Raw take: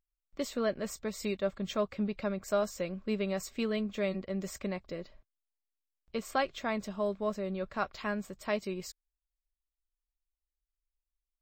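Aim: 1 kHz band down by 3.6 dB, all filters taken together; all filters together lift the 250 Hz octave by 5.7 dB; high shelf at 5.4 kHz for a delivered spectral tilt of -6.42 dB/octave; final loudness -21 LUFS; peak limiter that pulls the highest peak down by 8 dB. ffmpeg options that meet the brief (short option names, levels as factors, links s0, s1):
-af "equalizer=f=250:t=o:g=7.5,equalizer=f=1000:t=o:g=-5,highshelf=f=5400:g=-7,volume=5.62,alimiter=limit=0.299:level=0:latency=1"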